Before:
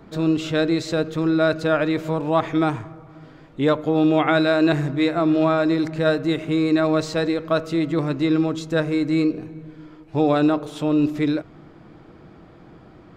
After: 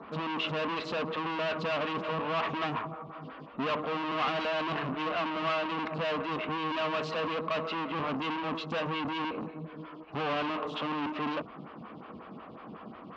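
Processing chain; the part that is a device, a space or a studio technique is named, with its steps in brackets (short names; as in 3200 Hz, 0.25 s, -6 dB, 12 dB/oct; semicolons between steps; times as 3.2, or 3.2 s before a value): vibe pedal into a guitar amplifier (photocell phaser 5.5 Hz; tube stage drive 35 dB, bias 0.35; speaker cabinet 94–4400 Hz, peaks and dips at 120 Hz -9 dB, 230 Hz +7 dB, 330 Hz -8 dB, 1100 Hz +10 dB, 2800 Hz +9 dB); gain +4.5 dB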